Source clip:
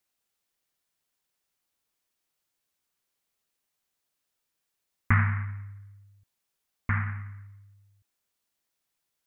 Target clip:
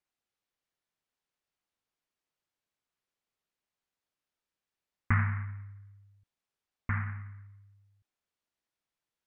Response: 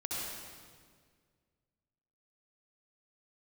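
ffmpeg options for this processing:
-af "aemphasis=mode=reproduction:type=50fm,volume=-4.5dB"

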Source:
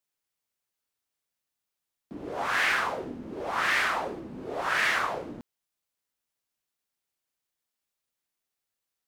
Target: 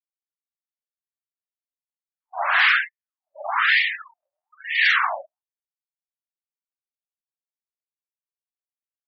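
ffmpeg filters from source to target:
-af "afftfilt=real='re*gte(hypot(re,im),0.0316)':imag='im*gte(hypot(re,im),0.0316)':win_size=1024:overlap=0.75,crystalizer=i=2.5:c=0,afftfilt=real='re*gte(b*sr/1024,550*pow(1800/550,0.5+0.5*sin(2*PI*1.1*pts/sr)))':imag='im*gte(b*sr/1024,550*pow(1800/550,0.5+0.5*sin(2*PI*1.1*pts/sr)))':win_size=1024:overlap=0.75,volume=6.5dB"

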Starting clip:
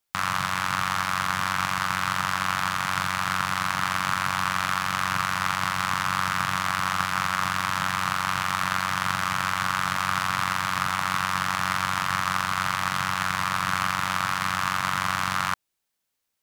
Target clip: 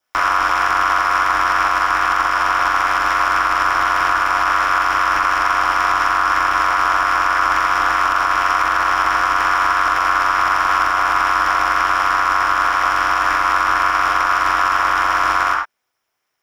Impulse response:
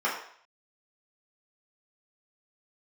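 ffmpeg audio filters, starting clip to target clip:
-filter_complex "[1:a]atrim=start_sample=2205,afade=t=out:st=0.16:d=0.01,atrim=end_sample=7497[a];[0:a][a]afir=irnorm=-1:irlink=0,alimiter=limit=-7dB:level=0:latency=1:release=57,aeval=exprs='val(0)*sin(2*PI*130*n/s)':c=same,volume=3dB"

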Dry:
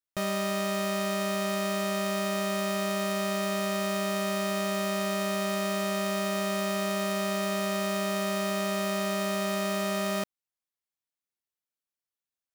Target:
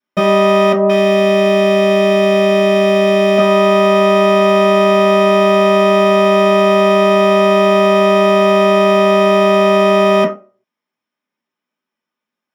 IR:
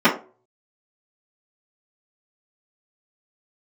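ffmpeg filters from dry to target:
-filter_complex "[0:a]asettb=1/sr,asplit=3[a][b][c];[a]atrim=end=0.724[d];[b]atrim=start=0.72:end=3.38,asetpts=PTS-STARTPTS,afade=t=in:d=0.004:c=qsin,afade=t=out:st=2.656:d=0.004:c=qsin,acrossover=split=1100[e][f];[f]adelay=170[g];[e][g]amix=inputs=2:normalize=0,atrim=end_sample=117306[h];[c]atrim=start=3.376[i];[d][h]acrossfade=d=0.004:c1=hsin:c2=qsin[j];[j][i]acrossfade=d=0.004:c1=qsin:c2=hsin[k];[1:a]atrim=start_sample=2205[l];[k][l]afir=irnorm=-1:irlink=0,volume=-5.5dB"

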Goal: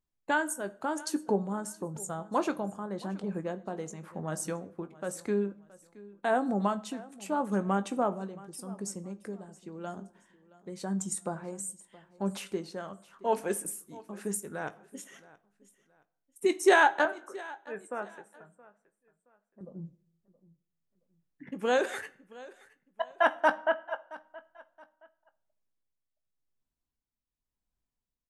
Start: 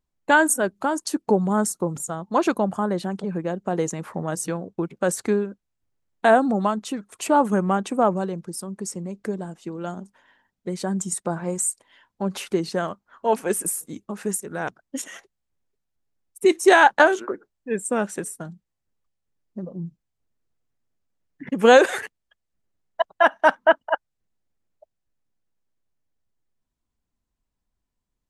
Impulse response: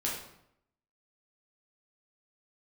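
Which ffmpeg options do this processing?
-filter_complex "[0:a]tremolo=f=0.9:d=0.58,asettb=1/sr,asplit=3[a][b][c];[a]atrim=end=17.054[d];[b]atrim=start=17.05:end=19.61,asetpts=PTS-STARTPTS,afade=t=in:d=0.004:c=qsin,afade=t=out:st=2.556:d=0.004:c=qsin,acrossover=split=550 2200:gain=0.224 1 0.126[e][f][g];[e][f][g]amix=inputs=3:normalize=0[h];[c]atrim=start=19.606[i];[d][h]acrossfade=d=0.004:c1=hsin:c2=qsin[j];[j][i]acrossfade=d=0.004:c1=qsin:c2=hsin,asplit=2[k][l];[l]adelay=20,volume=-12.5dB[m];[k][m]amix=inputs=2:normalize=0,aecho=1:1:672|1344:0.0944|0.0283,asplit=2[n][o];[1:a]atrim=start_sample=2205,asetrate=57330,aresample=44100[p];[o][p]afir=irnorm=-1:irlink=0,volume=-15.5dB[q];[n][q]amix=inputs=2:normalize=0,volume=-8dB"

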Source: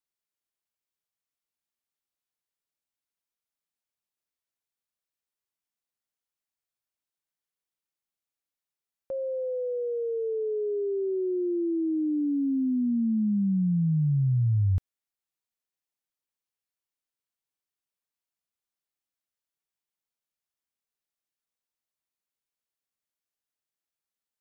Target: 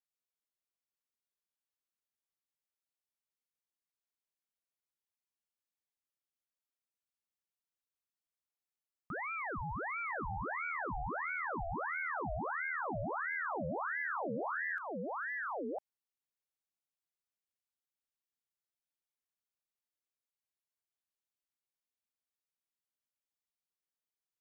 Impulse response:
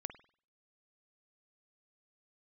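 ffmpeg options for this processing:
-af "aecho=1:1:1004:0.447,acompressor=threshold=-27dB:ratio=6,aeval=exprs='val(0)*sin(2*PI*1100*n/s+1100*0.7/1.5*sin(2*PI*1.5*n/s))':c=same,volume=-5.5dB"

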